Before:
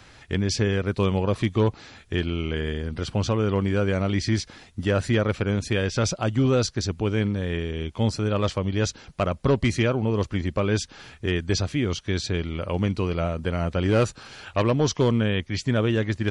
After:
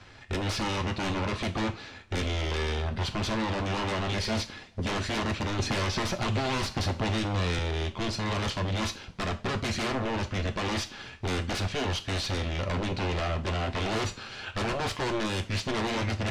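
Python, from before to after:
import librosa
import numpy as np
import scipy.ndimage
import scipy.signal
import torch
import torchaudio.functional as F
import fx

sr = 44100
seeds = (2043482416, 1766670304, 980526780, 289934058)

y = fx.tracing_dist(x, sr, depth_ms=0.05)
y = fx.dynamic_eq(y, sr, hz=3200.0, q=1.0, threshold_db=-46.0, ratio=4.0, max_db=5)
y = fx.leveller(y, sr, passes=1)
y = 10.0 ** (-22.5 / 20.0) * (np.abs((y / 10.0 ** (-22.5 / 20.0) + 3.0) % 4.0 - 2.0) - 1.0)
y = fx.air_absorb(y, sr, metres=72.0)
y = fx.rev_double_slope(y, sr, seeds[0], early_s=0.31, late_s=2.4, knee_db=-28, drr_db=5.5)
y = fx.band_squash(y, sr, depth_pct=100, at=(5.59, 7.59))
y = y * 10.0 ** (-2.5 / 20.0)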